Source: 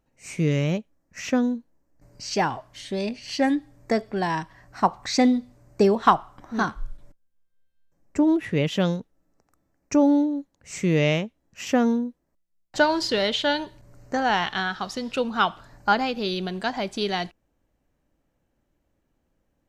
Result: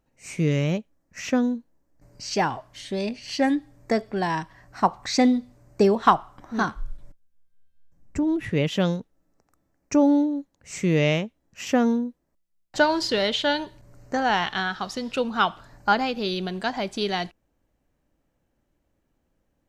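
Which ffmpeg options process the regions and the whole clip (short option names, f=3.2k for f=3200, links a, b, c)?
-filter_complex "[0:a]asettb=1/sr,asplit=3[a][b][c];[a]atrim=end=6.744[d];[b]atrim=start=6.74:end=8.5,asetpts=PTS-STARTPTS,afade=t=in:d=0.004:c=qsin,afade=t=out:st=1.756:d=0.004:c=qsin,asubboost=boost=6.5:cutoff=230,acompressor=threshold=-24dB:ratio=2:attack=3.2:release=140:knee=1:detection=peak[e];[c]atrim=start=8.496[f];[d][e]acrossfade=d=0.004:c1=hsin:c2=qsin[g];[g][f]acrossfade=d=0.004:c1=qsin:c2=hsin"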